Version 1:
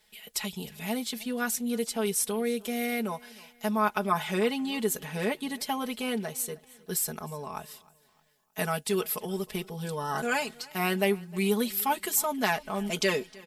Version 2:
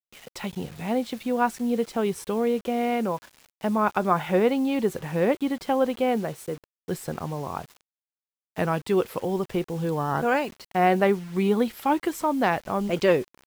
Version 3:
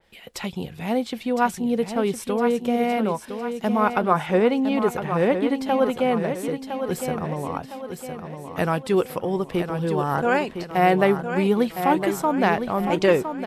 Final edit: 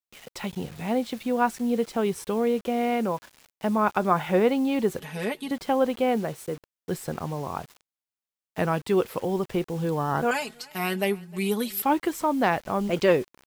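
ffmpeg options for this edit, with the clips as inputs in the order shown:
-filter_complex "[0:a]asplit=2[s0][s1];[1:a]asplit=3[s2][s3][s4];[s2]atrim=end=5.002[s5];[s0]atrim=start=4.998:end=5.512[s6];[s3]atrim=start=5.508:end=10.312[s7];[s1]atrim=start=10.308:end=11.822[s8];[s4]atrim=start=11.818[s9];[s5][s6]acrossfade=d=0.004:c1=hsin:c2=hsin[s10];[s10][s7]acrossfade=d=0.004:c1=hsin:c2=hsin[s11];[s11][s8]acrossfade=d=0.004:c1=hsin:c2=hsin[s12];[s12][s9]acrossfade=d=0.004:c1=hsin:c2=hsin"

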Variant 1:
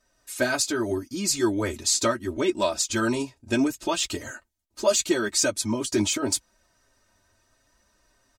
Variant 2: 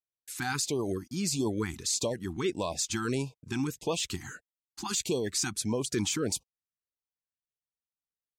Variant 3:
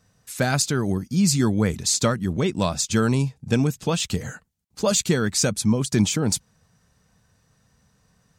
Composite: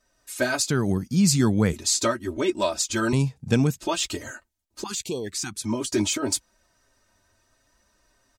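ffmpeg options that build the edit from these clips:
-filter_complex "[2:a]asplit=2[s0][s1];[0:a]asplit=4[s2][s3][s4][s5];[s2]atrim=end=0.702[s6];[s0]atrim=start=0.698:end=1.732[s7];[s3]atrim=start=1.728:end=3.132[s8];[s1]atrim=start=3.128:end=3.782[s9];[s4]atrim=start=3.778:end=4.842[s10];[1:a]atrim=start=4.838:end=5.642[s11];[s5]atrim=start=5.638[s12];[s6][s7]acrossfade=d=0.004:c1=hsin:c2=hsin[s13];[s13][s8]acrossfade=d=0.004:c1=hsin:c2=hsin[s14];[s14][s9]acrossfade=d=0.004:c1=hsin:c2=hsin[s15];[s15][s10]acrossfade=d=0.004:c1=hsin:c2=hsin[s16];[s16][s11]acrossfade=d=0.004:c1=hsin:c2=hsin[s17];[s17][s12]acrossfade=d=0.004:c1=hsin:c2=hsin"

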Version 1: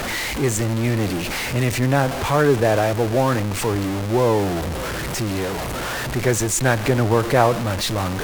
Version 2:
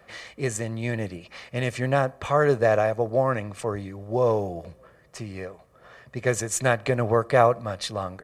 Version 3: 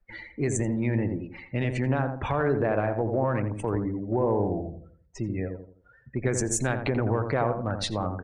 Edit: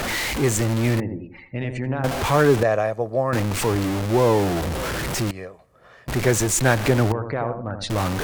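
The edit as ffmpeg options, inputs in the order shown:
-filter_complex "[2:a]asplit=2[s0][s1];[1:a]asplit=2[s2][s3];[0:a]asplit=5[s4][s5][s6][s7][s8];[s4]atrim=end=1.002[s9];[s0]atrim=start=0.998:end=2.042[s10];[s5]atrim=start=2.038:end=2.632[s11];[s2]atrim=start=2.628:end=3.332[s12];[s6]atrim=start=3.328:end=5.312[s13];[s3]atrim=start=5.308:end=6.082[s14];[s7]atrim=start=6.078:end=7.122[s15];[s1]atrim=start=7.118:end=7.902[s16];[s8]atrim=start=7.898[s17];[s9][s10]acrossfade=d=0.004:c1=hsin:c2=hsin[s18];[s18][s11]acrossfade=d=0.004:c1=hsin:c2=hsin[s19];[s19][s12]acrossfade=d=0.004:c1=hsin:c2=hsin[s20];[s20][s13]acrossfade=d=0.004:c1=hsin:c2=hsin[s21];[s21][s14]acrossfade=d=0.004:c1=hsin:c2=hsin[s22];[s22][s15]acrossfade=d=0.004:c1=hsin:c2=hsin[s23];[s23][s16]acrossfade=d=0.004:c1=hsin:c2=hsin[s24];[s24][s17]acrossfade=d=0.004:c1=hsin:c2=hsin"

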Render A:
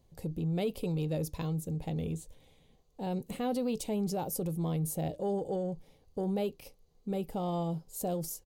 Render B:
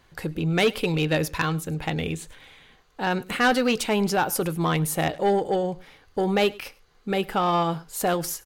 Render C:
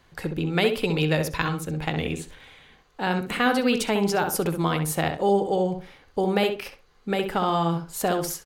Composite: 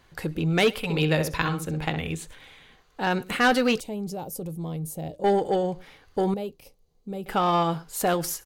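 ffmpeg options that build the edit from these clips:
-filter_complex "[0:a]asplit=2[s0][s1];[1:a]asplit=4[s2][s3][s4][s5];[s2]atrim=end=0.97[s6];[2:a]atrim=start=0.73:end=2.15[s7];[s3]atrim=start=1.91:end=3.802[s8];[s0]atrim=start=3.798:end=5.242[s9];[s4]atrim=start=5.238:end=6.342[s10];[s1]atrim=start=6.338:end=7.262[s11];[s5]atrim=start=7.258[s12];[s6][s7]acrossfade=d=0.24:c1=tri:c2=tri[s13];[s13][s8]acrossfade=d=0.24:c1=tri:c2=tri[s14];[s14][s9]acrossfade=d=0.004:c1=hsin:c2=hsin[s15];[s15][s10]acrossfade=d=0.004:c1=hsin:c2=hsin[s16];[s16][s11]acrossfade=d=0.004:c1=hsin:c2=hsin[s17];[s17][s12]acrossfade=d=0.004:c1=hsin:c2=hsin"

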